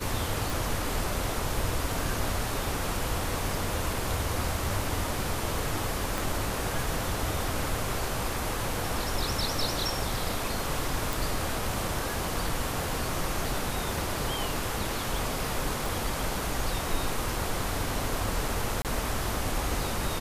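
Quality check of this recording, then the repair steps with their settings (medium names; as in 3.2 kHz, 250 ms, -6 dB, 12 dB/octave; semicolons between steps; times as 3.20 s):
0.50 s: pop
6.18 s: pop
11.13 s: pop
15.86 s: pop
18.82–18.85 s: dropout 28 ms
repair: de-click; interpolate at 18.82 s, 28 ms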